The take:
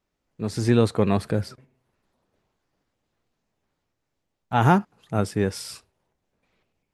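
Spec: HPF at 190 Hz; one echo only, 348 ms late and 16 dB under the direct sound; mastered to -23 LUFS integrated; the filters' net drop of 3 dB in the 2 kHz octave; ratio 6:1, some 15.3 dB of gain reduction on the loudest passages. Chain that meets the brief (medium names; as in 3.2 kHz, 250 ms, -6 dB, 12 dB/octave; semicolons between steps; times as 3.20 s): high-pass 190 Hz; peaking EQ 2 kHz -4.5 dB; compression 6:1, threshold -32 dBFS; delay 348 ms -16 dB; trim +15 dB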